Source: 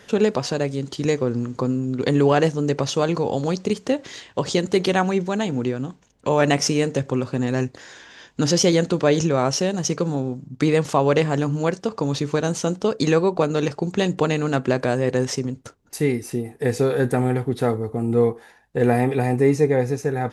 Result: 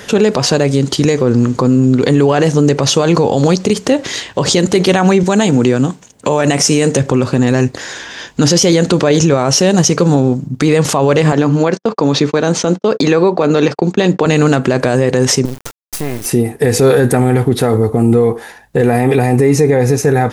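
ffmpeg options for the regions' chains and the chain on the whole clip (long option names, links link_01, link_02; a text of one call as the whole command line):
ffmpeg -i in.wav -filter_complex "[0:a]asettb=1/sr,asplit=3[link_01][link_02][link_03];[link_01]atrim=end=5.234[link_04];[link_02]atrim=start=5.23:end=6.97,asetpts=PTS-STARTPTS,afade=type=in:duration=0.004:curve=qsin,afade=type=out:start_time=1.736:duration=0.004:curve=qsin,highpass=96,equalizer=frequency=8200:width_type=o:width=0.74:gain=6[link_05];[link_03]atrim=start=6.966[link_06];[link_04][link_05]acrossfade=duration=0.004:curve1=hsin:curve2=qsin[link_07];[link_07][link_06]acrossfade=duration=0.004:curve1=qsin:curve2=hsin,asettb=1/sr,asplit=3[link_08][link_09][link_10];[link_08]atrim=end=11.324[link_11];[link_09]atrim=start=11.32:end=14.26,asetpts=PTS-STARTPTS,afade=type=in:duration=0.004:curve=qsin,afade=type=out:start_time=2.936:duration=0.004:curve=qsin,agate=range=-49dB:threshold=-33dB:ratio=16:release=100:detection=peak,highpass=180,lowpass=4700,bandreject=frequency=2900:width=19[link_12];[link_10]atrim=start=14.256[link_13];[link_11][link_12]acrossfade=duration=0.004:curve1=hsin:curve2=qsin[link_14];[link_14][link_13]acrossfade=duration=0.004:curve1=qsin:curve2=hsin,asettb=1/sr,asplit=3[link_15][link_16][link_17];[link_15]atrim=end=15.454[link_18];[link_16]atrim=start=15.45:end=16.26,asetpts=PTS-STARTPTS,afade=type=in:duration=0.004:curve=qsin,afade=type=out:start_time=0.806:duration=0.004:curve=qsin,acompressor=threshold=-33dB:ratio=3:attack=3.2:release=140:knee=1:detection=peak,acrusher=bits=5:dc=4:mix=0:aa=0.000001[link_19];[link_17]atrim=start=16.256[link_20];[link_18][link_19]acrossfade=duration=0.004:curve1=hsin:curve2=qsin[link_21];[link_21][link_20]acrossfade=duration=0.004:curve1=qsin:curve2=hsin,highshelf=frequency=8500:gain=6,alimiter=level_in=16.5dB:limit=-1dB:release=50:level=0:latency=1,volume=-1dB" out.wav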